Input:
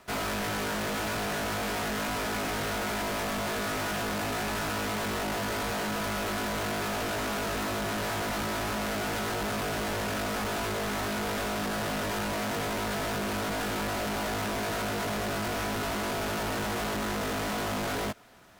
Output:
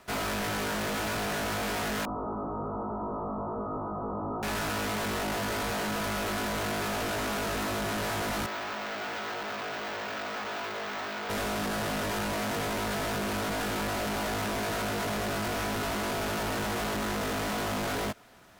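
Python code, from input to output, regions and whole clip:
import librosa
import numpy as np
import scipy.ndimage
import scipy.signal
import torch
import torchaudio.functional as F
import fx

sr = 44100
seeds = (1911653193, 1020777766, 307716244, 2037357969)

y = fx.chain(x, sr, fx.cheby_ripple(hz=1300.0, ripple_db=3),
    fx.room_flutter(wall_m=8.8, rt60_s=0.27), at=(2.05, 4.43))
y = fx.chain(y, sr, fx.highpass(hz=690.0, slope=6),
    fx.air_absorb(metres=110.0),
    fx.resample_bad(factor=2, down='none', up='hold'), at=(8.46, 11.3))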